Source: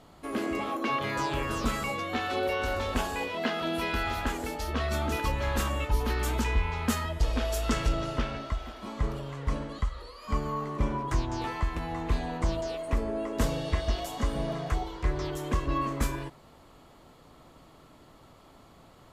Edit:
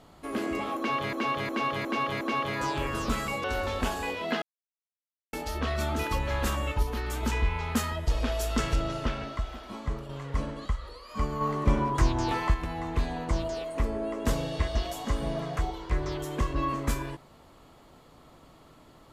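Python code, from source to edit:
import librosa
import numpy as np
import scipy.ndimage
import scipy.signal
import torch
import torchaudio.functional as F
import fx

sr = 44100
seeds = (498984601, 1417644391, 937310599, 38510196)

y = fx.edit(x, sr, fx.repeat(start_s=0.77, length_s=0.36, count=5),
    fx.cut(start_s=2.0, length_s=0.57),
    fx.silence(start_s=3.55, length_s=0.91),
    fx.clip_gain(start_s=5.96, length_s=0.4, db=-3.5),
    fx.fade_out_to(start_s=8.81, length_s=0.41, floor_db=-6.0),
    fx.clip_gain(start_s=10.54, length_s=1.13, db=4.5), tone=tone)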